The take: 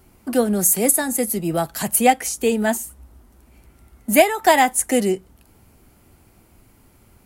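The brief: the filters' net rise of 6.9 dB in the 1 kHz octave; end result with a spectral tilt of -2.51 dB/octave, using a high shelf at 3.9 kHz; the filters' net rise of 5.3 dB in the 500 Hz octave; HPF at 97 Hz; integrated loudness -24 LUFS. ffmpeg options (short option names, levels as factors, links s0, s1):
-af "highpass=97,equalizer=f=500:t=o:g=4,equalizer=f=1000:t=o:g=7.5,highshelf=f=3900:g=6.5,volume=0.299"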